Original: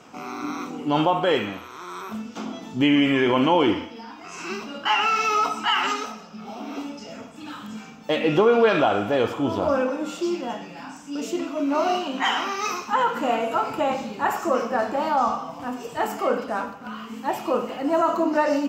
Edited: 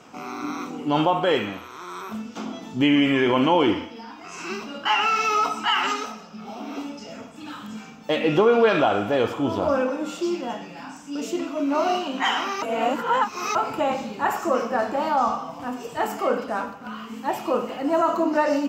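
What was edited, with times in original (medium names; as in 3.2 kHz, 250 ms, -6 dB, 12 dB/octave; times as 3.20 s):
12.62–13.55 s: reverse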